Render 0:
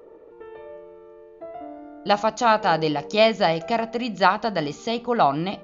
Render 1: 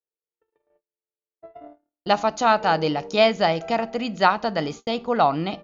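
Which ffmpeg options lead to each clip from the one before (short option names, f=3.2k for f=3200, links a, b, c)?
-af "agate=range=-56dB:threshold=-35dB:ratio=16:detection=peak"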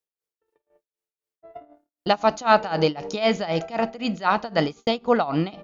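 -af "tremolo=f=3.9:d=0.9,volume=5dB"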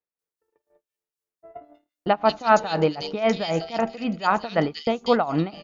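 -filter_complex "[0:a]acrossover=split=2900[a][b];[b]adelay=190[c];[a][c]amix=inputs=2:normalize=0"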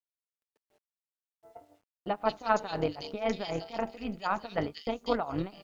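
-af "tremolo=f=200:d=0.667,acrusher=bits=10:mix=0:aa=0.000001,volume=-6.5dB"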